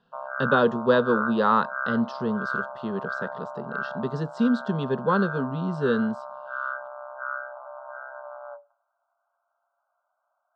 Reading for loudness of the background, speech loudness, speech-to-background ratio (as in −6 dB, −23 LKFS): −33.5 LKFS, −25.5 LKFS, 8.0 dB